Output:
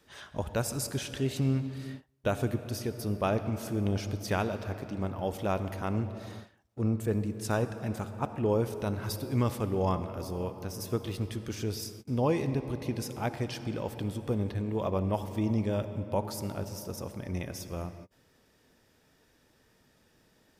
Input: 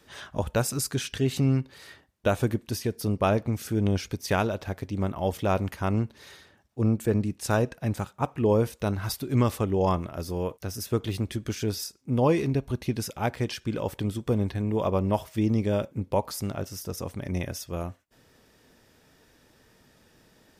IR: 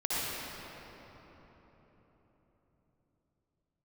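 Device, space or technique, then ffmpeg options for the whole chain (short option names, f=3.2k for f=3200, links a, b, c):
keyed gated reverb: -filter_complex "[0:a]asplit=3[a][b][c];[1:a]atrim=start_sample=2205[d];[b][d]afir=irnorm=-1:irlink=0[e];[c]apad=whole_len=908095[f];[e][f]sidechaingate=range=-33dB:threshold=-51dB:ratio=16:detection=peak,volume=-18dB[g];[a][g]amix=inputs=2:normalize=0,volume=-6dB"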